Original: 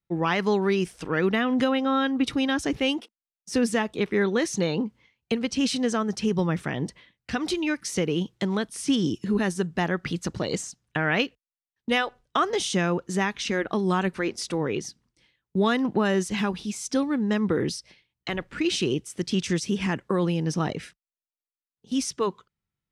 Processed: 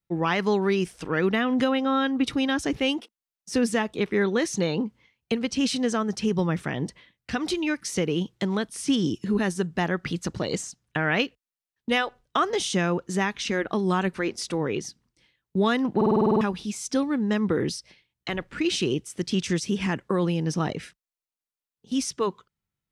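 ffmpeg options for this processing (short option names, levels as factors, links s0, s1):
-filter_complex "[0:a]asplit=10[s0][s1][s2][s3][s4][s5][s6][s7][s8][s9];[s0]atrim=end=16.012[s10];[s1]atrim=start=15.958:end=16.012[s11];[s2]atrim=start=15.958:end=16.012[s12];[s3]atrim=start=15.958:end=16.012[s13];[s4]atrim=start=15.958:end=16.012[s14];[s5]atrim=start=15.958:end=16.012[s15];[s6]atrim=start=15.958:end=16.012[s16];[s7]atrim=start=15.958:end=16.012[s17];[s8]atrim=start=15.958:end=16.012[s18];[s9]atrim=start=16.408[s19];[s10][s11]acrossfade=d=0.004:c1=hsin:c2=hsin[s20];[s20][s12]acrossfade=d=0.004:c1=hsin:c2=hsin[s21];[s21][s13]acrossfade=d=0.004:c1=hsin:c2=hsin[s22];[s22][s14]acrossfade=d=0.004:c1=hsin:c2=hsin[s23];[s23][s15]acrossfade=d=0.004:c1=hsin:c2=hsin[s24];[s24][s16]acrossfade=d=0.004:c1=hsin:c2=hsin[s25];[s25][s17]acrossfade=d=0.004:c1=hsin:c2=hsin[s26];[s26][s18]acrossfade=d=0.004:c1=hsin:c2=hsin[s27];[s27][s19]acrossfade=d=0.004:c1=hsin:c2=hsin"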